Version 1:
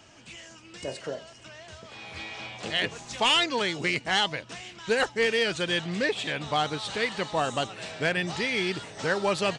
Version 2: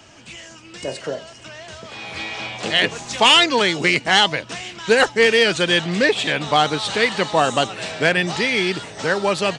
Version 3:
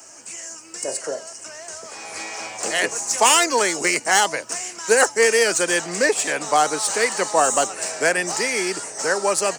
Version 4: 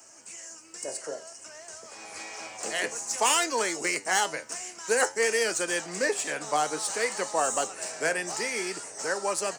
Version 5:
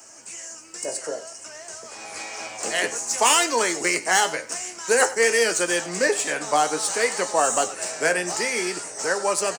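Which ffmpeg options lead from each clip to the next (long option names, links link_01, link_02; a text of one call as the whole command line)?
ffmpeg -i in.wav -filter_complex "[0:a]acrossover=split=130[link_01][link_02];[link_01]alimiter=level_in=25dB:limit=-24dB:level=0:latency=1,volume=-25dB[link_03];[link_02]dynaudnorm=framelen=280:gausssize=11:maxgain=3dB[link_04];[link_03][link_04]amix=inputs=2:normalize=0,volume=7dB" out.wav
ffmpeg -i in.wav -filter_complex "[0:a]acrossover=split=190|1400[link_01][link_02][link_03];[link_03]aexciter=amount=11.7:drive=9.7:freq=5500[link_04];[link_01][link_02][link_04]amix=inputs=3:normalize=0,acrossover=split=300 2300:gain=0.141 1 0.2[link_05][link_06][link_07];[link_05][link_06][link_07]amix=inputs=3:normalize=0" out.wav
ffmpeg -i in.wav -af "flanger=delay=8.8:depth=5:regen=74:speed=0.54:shape=sinusoidal,volume=-4dB" out.wav
ffmpeg -i in.wav -filter_complex "[0:a]asplit=2[link_01][link_02];[link_02]adelay=17,volume=-12dB[link_03];[link_01][link_03]amix=inputs=2:normalize=0,aecho=1:1:96:0.126,volume=5.5dB" out.wav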